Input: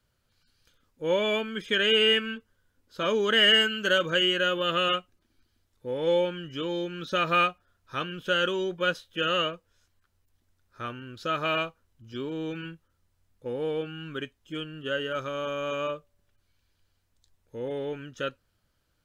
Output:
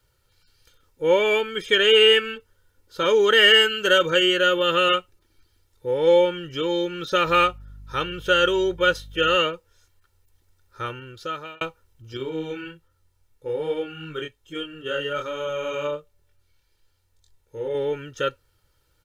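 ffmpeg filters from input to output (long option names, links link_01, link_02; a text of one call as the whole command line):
ffmpeg -i in.wav -filter_complex "[0:a]asettb=1/sr,asplit=3[link_01][link_02][link_03];[link_01]atrim=end=7.264[link_04];[link_02]atrim=start=7.26:end=9.36,asetpts=PTS-STARTPTS,afade=type=in:duration=0.004:curve=qsin,afade=type=out:start_time=2.096:duration=0.004:curve=qsin,aeval=exprs='val(0)+0.00398*(sin(2*PI*50*n/s)+sin(2*PI*2*50*n/s)/2+sin(2*PI*3*50*n/s)/3+sin(2*PI*4*50*n/s)/4+sin(2*PI*5*50*n/s)/5)':channel_layout=same[link_05];[link_03]atrim=start=9.356[link_06];[link_04][link_05]acrossfade=duration=0.004:curve1=hsin:curve2=qsin[link_07];[link_07][link_06]acrossfade=duration=0.004:curve1=qsin:curve2=hsin,asettb=1/sr,asplit=3[link_08][link_09][link_10];[link_08]atrim=end=12.174[link_11];[link_09]atrim=start=12.17:end=17.75,asetpts=PTS-STARTPTS,afade=type=in:duration=0.004:curve=qsin,afade=type=out:start_time=5.576:duration=0.004:curve=qsin,flanger=delay=22.5:depth=5:speed=1.2[link_12];[link_10]atrim=start=17.746[link_13];[link_11][link_12]acrossfade=duration=0.004:curve1=hsin:curve2=qsin[link_14];[link_14][link_13]acrossfade=duration=0.004:curve1=qsin:curve2=hsin,asplit=2[link_15][link_16];[link_15]atrim=end=11.61,asetpts=PTS-STARTPTS,afade=type=out:start_time=10.87:duration=0.74[link_17];[link_16]atrim=start=11.61,asetpts=PTS-STARTPTS,afade=type=in:duration=0.004:curve=hsin[link_18];[link_17][link_18]concat=n=2:v=0:a=1,highshelf=frequency=7700:gain=4,aecho=1:1:2.2:0.64,volume=4.5dB" out.wav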